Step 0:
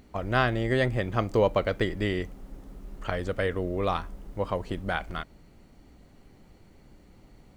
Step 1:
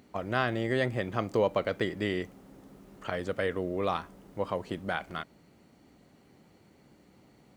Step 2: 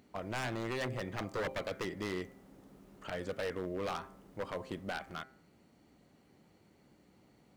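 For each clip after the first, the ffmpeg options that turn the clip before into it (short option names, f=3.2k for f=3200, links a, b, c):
-filter_complex "[0:a]highpass=130,asplit=2[a][b];[b]alimiter=limit=-17dB:level=0:latency=1,volume=-2.5dB[c];[a][c]amix=inputs=2:normalize=0,volume=-6.5dB"
-af "bandreject=f=131.7:t=h:w=4,bandreject=f=263.4:t=h:w=4,bandreject=f=395.1:t=h:w=4,bandreject=f=526.8:t=h:w=4,bandreject=f=658.5:t=h:w=4,bandreject=f=790.2:t=h:w=4,bandreject=f=921.9:t=h:w=4,bandreject=f=1.0536k:t=h:w=4,bandreject=f=1.1853k:t=h:w=4,bandreject=f=1.317k:t=h:w=4,bandreject=f=1.4487k:t=h:w=4,bandreject=f=1.5804k:t=h:w=4,bandreject=f=1.7121k:t=h:w=4,bandreject=f=1.8438k:t=h:w=4,bandreject=f=1.9755k:t=h:w=4,bandreject=f=2.1072k:t=h:w=4,bandreject=f=2.2389k:t=h:w=4,bandreject=f=2.3706k:t=h:w=4,aeval=exprs='0.0596*(abs(mod(val(0)/0.0596+3,4)-2)-1)':c=same,volume=-5dB"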